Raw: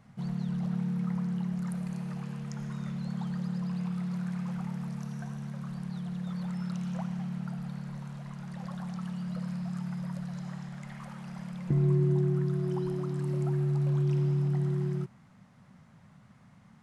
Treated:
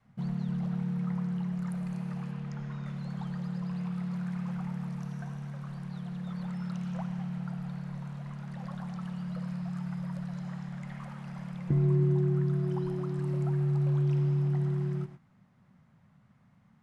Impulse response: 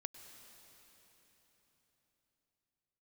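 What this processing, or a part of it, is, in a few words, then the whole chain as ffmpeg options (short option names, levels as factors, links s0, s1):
keyed gated reverb: -filter_complex "[0:a]adynamicequalizer=threshold=0.01:dfrequency=180:dqfactor=1:tfrequency=180:tqfactor=1:attack=5:release=100:ratio=0.375:range=2:mode=cutabove:tftype=bell,asettb=1/sr,asplit=3[s0][s1][s2];[s0]atrim=end=2.314[s3];[s1]atrim=start=2.31:end=2.86,asetpts=PTS-STARTPTS,afade=t=in:d=0.004:c=qsin,afade=t=out:st=0.546:d=0.004:c=qsin,lowpass=5100[s4];[s2]atrim=start=2.856[s5];[s3][s4]acrossfade=d=0.004:c1=hsin:c2=qsin[s6];[s6][s5]acrossfade=d=0.004:c1=qsin:c2=hsin,asplit=3[s7][s8][s9];[1:a]atrim=start_sample=2205[s10];[s8][s10]afir=irnorm=-1:irlink=0[s11];[s9]apad=whole_len=741878[s12];[s11][s12]sidechaingate=range=0.0224:threshold=0.00398:ratio=16:detection=peak,volume=2.24[s13];[s7][s13]amix=inputs=2:normalize=0,bass=f=250:g=2,treble=f=4000:g=-6,volume=0.422"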